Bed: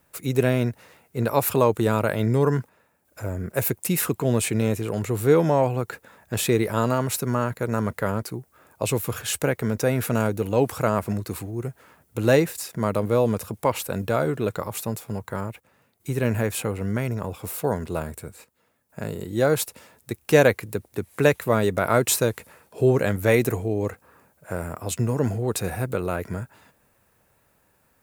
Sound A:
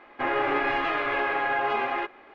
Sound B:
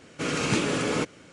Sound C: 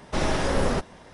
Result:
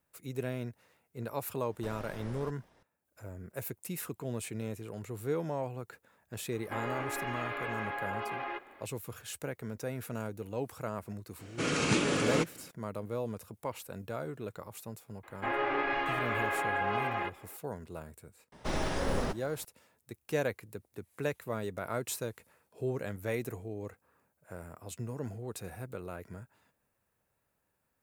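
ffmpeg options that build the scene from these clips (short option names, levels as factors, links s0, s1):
-filter_complex "[3:a]asplit=2[s0][s1];[1:a]asplit=2[s2][s3];[0:a]volume=0.168[s4];[s0]acrossover=split=610|2700[s5][s6][s7];[s5]acompressor=threshold=0.0398:ratio=4[s8];[s6]acompressor=threshold=0.0251:ratio=4[s9];[s7]acompressor=threshold=0.00631:ratio=4[s10];[s8][s9][s10]amix=inputs=3:normalize=0[s11];[s2]acompressor=threshold=0.0355:ratio=6:attack=3.2:release=140:knee=1:detection=peak[s12];[s1]acrusher=bits=8:mode=log:mix=0:aa=0.000001[s13];[s11]atrim=end=1.13,asetpts=PTS-STARTPTS,volume=0.133,afade=t=in:d=0.004:c=hsin,afade=t=out:st=1.126:d=0.004:c=hsin,adelay=1700[s14];[s12]atrim=end=2.34,asetpts=PTS-STARTPTS,volume=0.596,afade=t=in:d=0.004:c=hsin,afade=t=out:st=2.336:d=0.004:c=hsin,adelay=6520[s15];[2:a]atrim=end=1.32,asetpts=PTS-STARTPTS,volume=0.708,afade=t=in:d=0.004:c=hsin,afade=t=out:st=1.316:d=0.004:c=hsin,adelay=11390[s16];[s3]atrim=end=2.34,asetpts=PTS-STARTPTS,volume=0.501,afade=t=in:d=0.004:c=hsin,afade=t=out:st=2.336:d=0.004:c=hsin,adelay=15230[s17];[s13]atrim=end=1.13,asetpts=PTS-STARTPTS,volume=0.398,afade=t=in:d=0.004:c=hsin,afade=t=out:st=1.126:d=0.004:c=hsin,adelay=18520[s18];[s4][s14][s15][s16][s17][s18]amix=inputs=6:normalize=0"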